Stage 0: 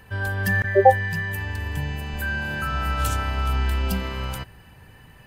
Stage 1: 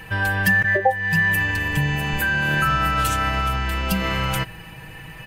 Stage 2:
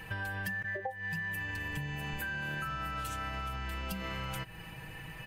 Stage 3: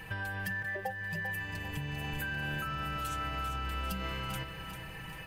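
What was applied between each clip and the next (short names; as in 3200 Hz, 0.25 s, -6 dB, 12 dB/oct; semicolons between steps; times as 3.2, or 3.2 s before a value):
compressor 8:1, threshold -25 dBFS, peak gain reduction 17 dB; bell 2500 Hz +8 dB 0.56 oct; comb 6.2 ms, depth 72%; gain +7.5 dB
compressor 6:1, threshold -28 dBFS, peak gain reduction 14.5 dB; gain -7 dB
lo-fi delay 0.395 s, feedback 55%, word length 11-bit, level -8.5 dB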